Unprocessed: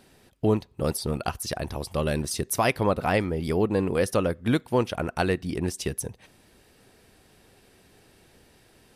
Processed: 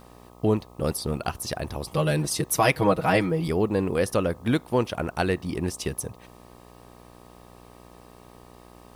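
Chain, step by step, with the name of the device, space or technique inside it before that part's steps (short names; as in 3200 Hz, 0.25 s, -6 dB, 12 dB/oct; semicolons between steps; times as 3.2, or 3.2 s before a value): 1.87–3.48 comb 6.3 ms, depth 97%; video cassette with head-switching buzz (buzz 60 Hz, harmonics 21, -50 dBFS -2 dB/oct; white noise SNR 39 dB)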